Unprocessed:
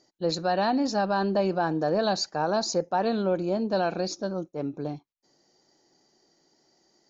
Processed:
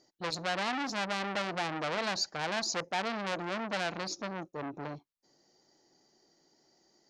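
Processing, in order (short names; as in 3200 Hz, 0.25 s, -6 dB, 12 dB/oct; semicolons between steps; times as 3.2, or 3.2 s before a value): core saturation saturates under 2700 Hz; gain -2.5 dB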